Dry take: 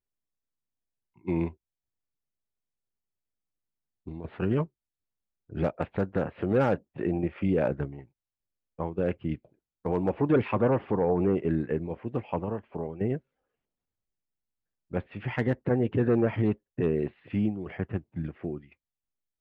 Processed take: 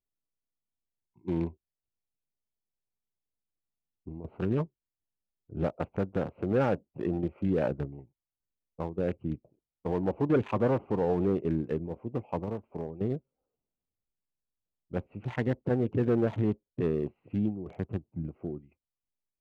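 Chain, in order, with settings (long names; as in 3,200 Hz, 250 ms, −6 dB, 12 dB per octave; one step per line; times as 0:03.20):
adaptive Wiener filter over 25 samples
level −2 dB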